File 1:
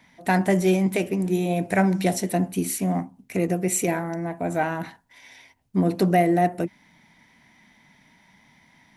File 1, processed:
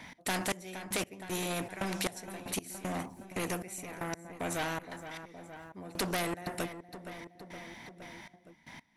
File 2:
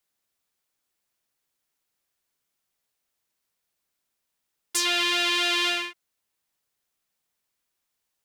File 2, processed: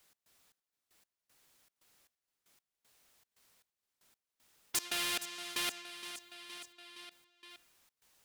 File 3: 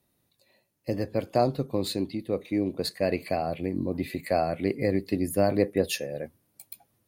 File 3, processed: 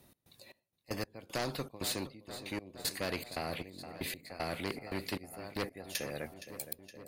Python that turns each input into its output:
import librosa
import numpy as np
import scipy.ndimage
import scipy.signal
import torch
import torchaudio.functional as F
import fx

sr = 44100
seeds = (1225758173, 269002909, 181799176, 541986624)

p1 = fx.high_shelf(x, sr, hz=12000.0, db=-3.5)
p2 = fx.step_gate(p1, sr, bpm=116, pattern='x.xx...x..xx', floor_db=-24.0, edge_ms=4.5)
p3 = 10.0 ** (-17.5 / 20.0) * np.tanh(p2 / 10.0 ** (-17.5 / 20.0))
p4 = p3 + fx.echo_feedback(p3, sr, ms=467, feedback_pct=56, wet_db=-21, dry=0)
p5 = fx.spectral_comp(p4, sr, ratio=2.0)
y = p5 * librosa.db_to_amplitude(-1.5)